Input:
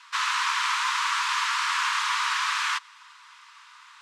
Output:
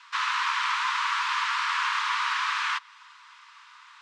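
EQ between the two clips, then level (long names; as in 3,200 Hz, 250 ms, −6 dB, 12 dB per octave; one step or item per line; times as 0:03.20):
dynamic equaliser 7,600 Hz, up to −4 dB, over −43 dBFS, Q 0.77
high-frequency loss of the air 62 metres
0.0 dB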